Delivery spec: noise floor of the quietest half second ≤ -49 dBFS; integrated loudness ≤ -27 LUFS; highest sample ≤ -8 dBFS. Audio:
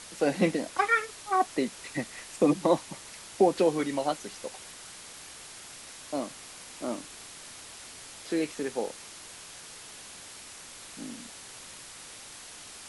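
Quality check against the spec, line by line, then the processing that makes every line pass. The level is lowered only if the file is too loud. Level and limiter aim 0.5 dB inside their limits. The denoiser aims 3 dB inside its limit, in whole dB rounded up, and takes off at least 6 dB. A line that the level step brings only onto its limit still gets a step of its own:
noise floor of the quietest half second -46 dBFS: fail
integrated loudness -29.5 LUFS: OK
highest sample -10.5 dBFS: OK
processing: denoiser 6 dB, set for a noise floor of -46 dBFS

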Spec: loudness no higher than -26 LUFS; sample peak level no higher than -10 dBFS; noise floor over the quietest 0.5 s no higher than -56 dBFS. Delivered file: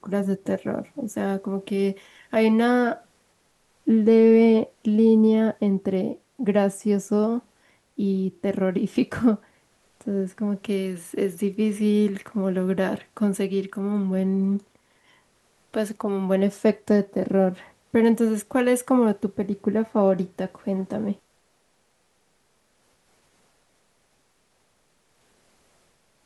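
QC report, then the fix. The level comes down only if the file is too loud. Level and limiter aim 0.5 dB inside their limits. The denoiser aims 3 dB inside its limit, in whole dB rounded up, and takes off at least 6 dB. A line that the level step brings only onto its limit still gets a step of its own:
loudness -23.0 LUFS: fail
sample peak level -8.0 dBFS: fail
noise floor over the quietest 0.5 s -66 dBFS: OK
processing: gain -3.5 dB

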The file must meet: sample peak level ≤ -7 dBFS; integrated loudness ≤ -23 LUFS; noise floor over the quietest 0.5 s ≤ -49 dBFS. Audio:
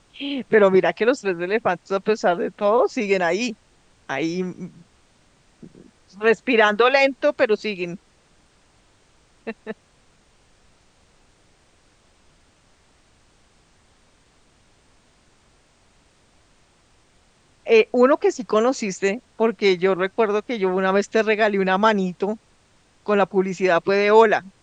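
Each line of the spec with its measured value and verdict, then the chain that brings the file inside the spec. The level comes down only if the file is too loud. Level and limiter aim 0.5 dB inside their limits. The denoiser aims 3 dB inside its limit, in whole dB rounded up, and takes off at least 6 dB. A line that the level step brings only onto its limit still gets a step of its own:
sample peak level -2.5 dBFS: fail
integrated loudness -20.0 LUFS: fail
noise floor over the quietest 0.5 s -58 dBFS: OK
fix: gain -3.5 dB; limiter -7.5 dBFS

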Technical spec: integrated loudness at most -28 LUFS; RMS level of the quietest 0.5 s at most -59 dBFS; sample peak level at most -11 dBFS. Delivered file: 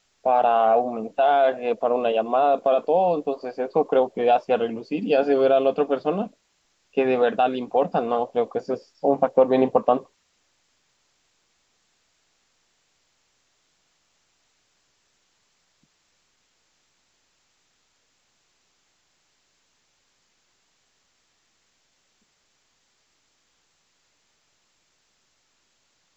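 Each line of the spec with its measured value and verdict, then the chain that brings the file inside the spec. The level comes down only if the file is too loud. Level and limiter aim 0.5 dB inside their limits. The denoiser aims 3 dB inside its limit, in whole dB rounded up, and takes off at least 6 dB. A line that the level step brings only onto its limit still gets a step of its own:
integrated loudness -22.0 LUFS: fail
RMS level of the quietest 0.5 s -68 dBFS: OK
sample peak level -4.0 dBFS: fail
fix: gain -6.5 dB; limiter -11.5 dBFS

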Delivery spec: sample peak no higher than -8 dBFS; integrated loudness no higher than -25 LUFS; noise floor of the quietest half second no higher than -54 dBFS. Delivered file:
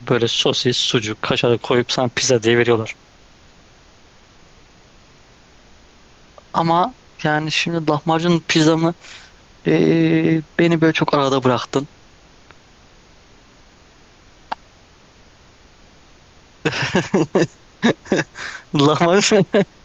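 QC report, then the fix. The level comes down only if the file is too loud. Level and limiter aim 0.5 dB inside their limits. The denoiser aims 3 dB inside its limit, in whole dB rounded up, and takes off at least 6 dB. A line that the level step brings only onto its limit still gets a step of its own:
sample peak -4.0 dBFS: fail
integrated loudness -17.5 LUFS: fail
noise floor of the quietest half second -49 dBFS: fail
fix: gain -8 dB

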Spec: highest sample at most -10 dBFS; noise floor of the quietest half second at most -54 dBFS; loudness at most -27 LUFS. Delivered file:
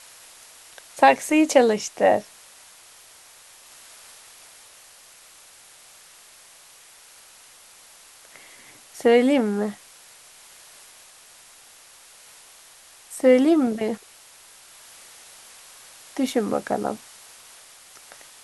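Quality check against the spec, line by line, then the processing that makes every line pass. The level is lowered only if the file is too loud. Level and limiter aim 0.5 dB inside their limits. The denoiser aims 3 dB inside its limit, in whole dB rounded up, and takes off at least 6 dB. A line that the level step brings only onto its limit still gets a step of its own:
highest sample -3.0 dBFS: fail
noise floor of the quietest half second -50 dBFS: fail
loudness -21.0 LUFS: fail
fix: gain -6.5 dB; limiter -10.5 dBFS

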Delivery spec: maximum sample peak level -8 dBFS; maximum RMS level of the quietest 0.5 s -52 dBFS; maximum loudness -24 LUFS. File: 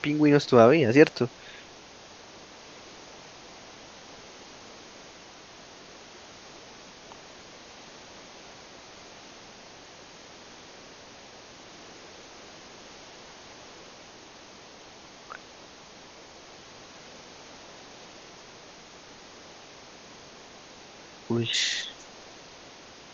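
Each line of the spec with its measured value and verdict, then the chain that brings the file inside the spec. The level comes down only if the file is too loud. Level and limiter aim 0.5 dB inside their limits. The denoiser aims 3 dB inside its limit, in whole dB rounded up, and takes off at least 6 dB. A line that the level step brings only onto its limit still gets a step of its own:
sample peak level -3.0 dBFS: fail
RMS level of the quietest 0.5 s -49 dBFS: fail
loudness -22.0 LUFS: fail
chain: denoiser 6 dB, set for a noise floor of -49 dBFS; gain -2.5 dB; limiter -8.5 dBFS

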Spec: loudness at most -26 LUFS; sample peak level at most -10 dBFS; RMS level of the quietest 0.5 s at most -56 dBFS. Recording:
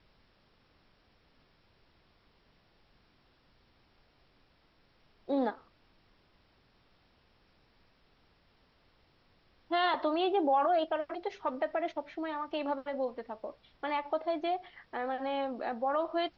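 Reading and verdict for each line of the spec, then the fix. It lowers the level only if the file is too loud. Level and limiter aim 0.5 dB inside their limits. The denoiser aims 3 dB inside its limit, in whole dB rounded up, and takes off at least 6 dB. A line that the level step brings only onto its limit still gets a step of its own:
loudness -33.5 LUFS: OK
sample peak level -19.0 dBFS: OK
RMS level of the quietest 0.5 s -68 dBFS: OK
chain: none

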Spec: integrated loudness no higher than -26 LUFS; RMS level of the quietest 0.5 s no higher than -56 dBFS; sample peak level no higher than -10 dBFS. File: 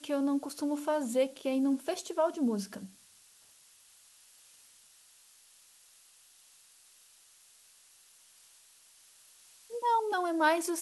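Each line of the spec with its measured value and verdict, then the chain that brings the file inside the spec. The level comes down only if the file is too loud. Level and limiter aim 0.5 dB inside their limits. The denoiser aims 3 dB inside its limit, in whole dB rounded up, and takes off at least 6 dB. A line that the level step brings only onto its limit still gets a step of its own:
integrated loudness -31.0 LUFS: OK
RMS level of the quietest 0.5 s -61 dBFS: OK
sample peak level -15.5 dBFS: OK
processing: none

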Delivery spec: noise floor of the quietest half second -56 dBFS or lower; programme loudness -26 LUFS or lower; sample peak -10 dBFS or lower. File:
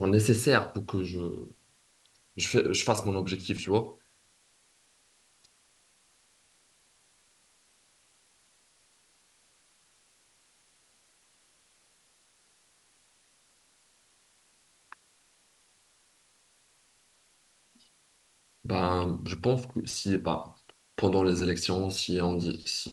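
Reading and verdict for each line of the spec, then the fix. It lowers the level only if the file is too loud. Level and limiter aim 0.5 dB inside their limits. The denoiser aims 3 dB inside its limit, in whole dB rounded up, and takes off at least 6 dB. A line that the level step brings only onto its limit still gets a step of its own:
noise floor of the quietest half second -66 dBFS: OK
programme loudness -29.0 LUFS: OK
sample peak -7.5 dBFS: fail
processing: limiter -10.5 dBFS

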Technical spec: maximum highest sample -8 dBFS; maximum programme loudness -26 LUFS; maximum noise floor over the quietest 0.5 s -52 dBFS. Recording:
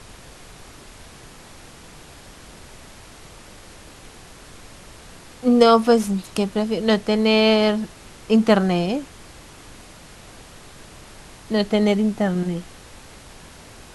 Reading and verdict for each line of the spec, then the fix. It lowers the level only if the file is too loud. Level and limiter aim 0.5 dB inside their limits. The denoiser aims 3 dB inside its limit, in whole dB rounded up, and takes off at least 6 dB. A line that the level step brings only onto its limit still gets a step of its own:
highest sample -2.0 dBFS: fail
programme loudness -19.5 LUFS: fail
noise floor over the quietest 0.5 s -43 dBFS: fail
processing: denoiser 6 dB, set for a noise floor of -43 dBFS; gain -7 dB

